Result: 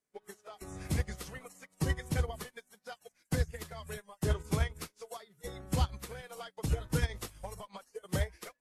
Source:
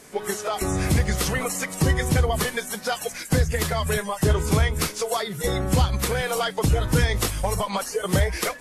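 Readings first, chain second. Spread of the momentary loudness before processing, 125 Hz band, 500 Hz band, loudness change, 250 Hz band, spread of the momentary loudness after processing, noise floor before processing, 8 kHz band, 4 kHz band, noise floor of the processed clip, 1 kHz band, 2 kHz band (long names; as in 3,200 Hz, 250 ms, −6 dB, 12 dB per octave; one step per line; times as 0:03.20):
6 LU, −12.0 dB, −16.0 dB, −13.0 dB, −13.0 dB, 16 LU, −38 dBFS, −17.5 dB, −16.5 dB, −79 dBFS, −16.5 dB, −15.5 dB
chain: expander for the loud parts 2.5 to 1, over −38 dBFS
level −7.5 dB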